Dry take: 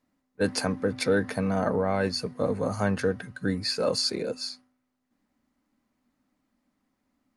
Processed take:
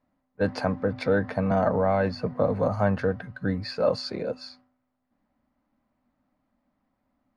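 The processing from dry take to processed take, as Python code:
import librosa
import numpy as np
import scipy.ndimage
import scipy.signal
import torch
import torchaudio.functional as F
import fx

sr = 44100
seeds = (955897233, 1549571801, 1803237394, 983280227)

y = fx.curve_eq(x, sr, hz=(110.0, 410.0, 610.0, 4700.0, 8200.0), db=(0, -7, 2, -12, -26))
y = fx.band_squash(y, sr, depth_pct=70, at=(1.51, 2.68))
y = y * librosa.db_to_amplitude(4.0)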